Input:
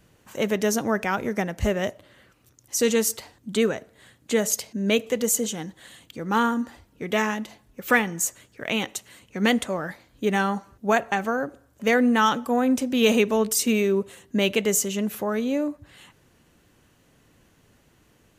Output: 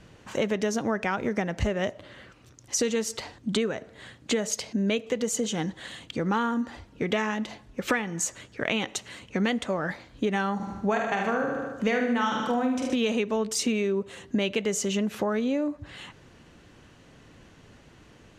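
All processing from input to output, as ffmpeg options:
-filter_complex "[0:a]asettb=1/sr,asplit=3[a][b][c];[a]atrim=end=10.554[d];[b]atrim=start=10.55:end=12.96,asetpts=PTS-STARTPTS,afade=t=in:d=0.004:c=qsin,afade=t=out:st=2.406:d=0.004:c=qsin,asplit=2[e][f];[f]adelay=47,volume=-5dB[g];[e][g]amix=inputs=2:normalize=0,atrim=end_sample=106281,aecho=1:1:75|150|225|300|375|450|525:0.473|0.256|0.138|0.0745|0.0402|0.0217|0.0117,atrim=end_sample=106281[h];[c]atrim=start=12.956[i];[d][h]acrossfade=d=0.004:c1=hsin:c2=qsin[j];[j][i]acrossfade=d=0.004:c1=qsin:c2=hsin,lowpass=5.8k,acompressor=threshold=-31dB:ratio=6,volume=7dB"

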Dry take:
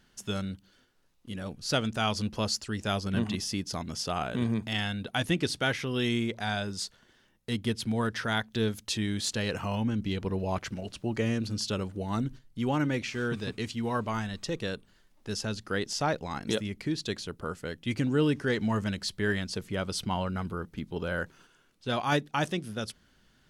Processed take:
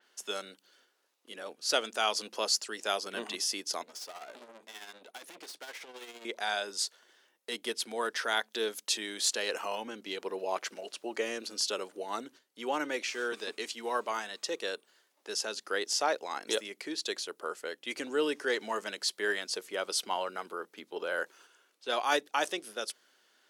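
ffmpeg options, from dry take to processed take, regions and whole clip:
-filter_complex "[0:a]asettb=1/sr,asplit=3[a][b][c];[a]atrim=end=3.834[d];[b]atrim=start=3.83:end=6.25,asetpts=PTS-STARTPTS,afade=t=in:d=0.004:c=qsin,afade=t=out:st=2.416:d=0.004:c=qsin,aeval=exprs='(tanh(100*val(0)+0.45)-tanh(0.45))/100':c=same,tremolo=f=15:d=0.54[e];[c]atrim=start=6.246[f];[d][e]acrossfade=d=0.004:c1=hsin:c2=qsin[g];[g][f]acrossfade=d=0.004:c1=qsin:c2=hsin,highpass=f=380:w=0.5412,highpass=f=380:w=1.3066,adynamicequalizer=threshold=0.00631:dfrequency=4600:dqfactor=0.7:tfrequency=4600:tqfactor=0.7:attack=5:release=100:ratio=0.375:range=2.5:mode=boostabove:tftype=highshelf"

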